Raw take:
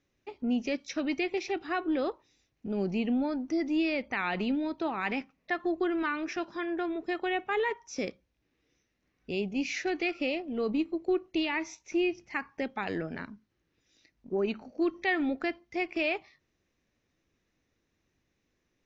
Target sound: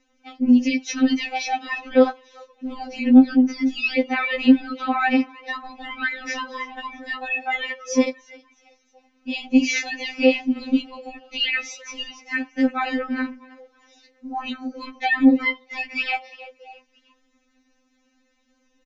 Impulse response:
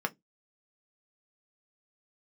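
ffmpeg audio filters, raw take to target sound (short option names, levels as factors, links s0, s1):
-filter_complex "[0:a]aresample=16000,aresample=44100,asplit=4[s0][s1][s2][s3];[s1]adelay=323,afreqshift=86,volume=0.0708[s4];[s2]adelay=646,afreqshift=172,volume=0.0299[s5];[s3]adelay=969,afreqshift=258,volume=0.0124[s6];[s0][s4][s5][s6]amix=inputs=4:normalize=0,alimiter=level_in=12.6:limit=0.891:release=50:level=0:latency=1,afftfilt=real='re*3.46*eq(mod(b,12),0)':imag='im*3.46*eq(mod(b,12),0)':win_size=2048:overlap=0.75,volume=0.376"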